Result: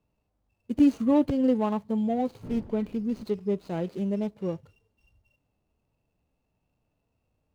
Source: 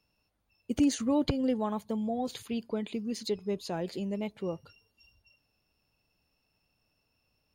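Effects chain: median filter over 25 samples; 2.42–3.22 s: wind noise 220 Hz -43 dBFS; harmonic-percussive split percussive -8 dB; trim +6 dB

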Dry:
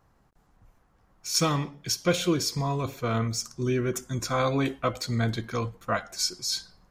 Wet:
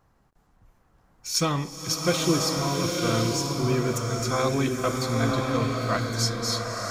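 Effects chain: swelling reverb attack 1010 ms, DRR 0 dB

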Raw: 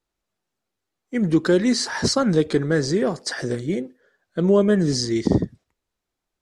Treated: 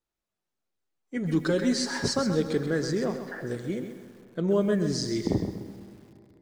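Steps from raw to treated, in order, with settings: 1.16–2.08 s: comb 7.2 ms, depth 58%; 3.04–3.46 s: low-pass 3.4 kHz -> 1.6 kHz 24 dB/octave; feedback comb 110 Hz, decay 0.75 s, harmonics all, mix 40%; algorithmic reverb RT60 3.3 s, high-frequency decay 0.7×, pre-delay 75 ms, DRR 15 dB; bit-crushed delay 131 ms, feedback 35%, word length 8-bit, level -8.5 dB; trim -3.5 dB

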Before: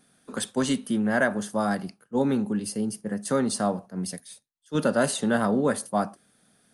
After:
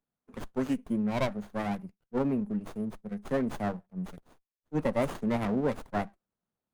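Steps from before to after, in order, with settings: expander on every frequency bin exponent 1.5; Butterworth band-stop 3.9 kHz, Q 1.2; sliding maximum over 17 samples; trim -2.5 dB

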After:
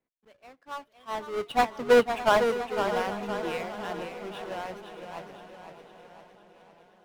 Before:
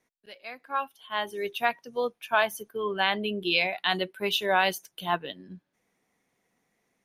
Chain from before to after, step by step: square wave that keeps the level; Doppler pass-by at 1.93 s, 13 m/s, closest 2.3 m; low-pass 1.4 kHz 6 dB/octave; shuffle delay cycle 815 ms, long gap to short 3:1, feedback 48%, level -15 dB; modulated delay 510 ms, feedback 51%, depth 84 cents, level -8 dB; trim +7.5 dB

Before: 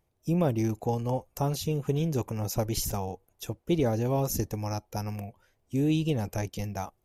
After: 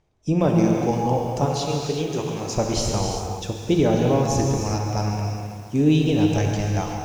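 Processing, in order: 0.47–0.91 s: high-pass 130 Hz; 1.45–2.50 s: bass shelf 280 Hz -11.5 dB; low-pass 7.1 kHz 24 dB/octave; gated-style reverb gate 400 ms flat, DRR 0.5 dB; bit-crushed delay 135 ms, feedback 80%, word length 8-bit, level -14 dB; trim +6 dB

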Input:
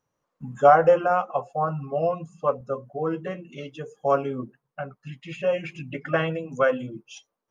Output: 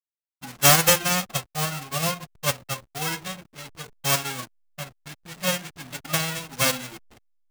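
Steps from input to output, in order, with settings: formants flattened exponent 0.1; hysteresis with a dead band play -31 dBFS; trim -1 dB

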